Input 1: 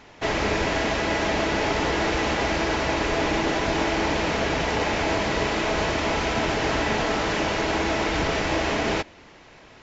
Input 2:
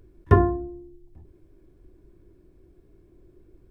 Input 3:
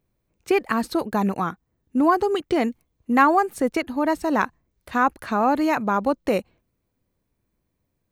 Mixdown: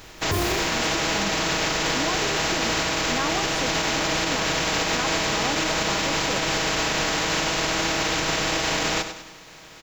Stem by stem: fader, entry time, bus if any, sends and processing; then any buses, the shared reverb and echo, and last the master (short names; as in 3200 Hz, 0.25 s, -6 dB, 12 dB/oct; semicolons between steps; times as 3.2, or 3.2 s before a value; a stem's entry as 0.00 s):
+2.5 dB, 0.00 s, no send, echo send -13 dB, spectral contrast lowered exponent 0.43; comb 6.3 ms, depth 51%
+2.0 dB, 0.00 s, no send, no echo send, modulation noise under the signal 11 dB
-7.5 dB, 0.00 s, no send, no echo send, dry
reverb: off
echo: feedback echo 98 ms, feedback 45%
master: limiter -14.5 dBFS, peak gain reduction 16 dB